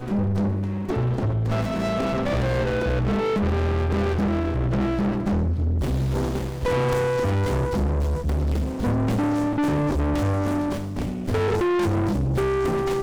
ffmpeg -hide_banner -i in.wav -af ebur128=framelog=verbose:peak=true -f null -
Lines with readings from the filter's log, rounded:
Integrated loudness:
  I:         -23.7 LUFS
  Threshold: -33.7 LUFS
Loudness range:
  LRA:         0.7 LU
  Threshold: -43.7 LUFS
  LRA low:   -24.1 LUFS
  LRA high:  -23.4 LUFS
True peak:
  Peak:      -18.0 dBFS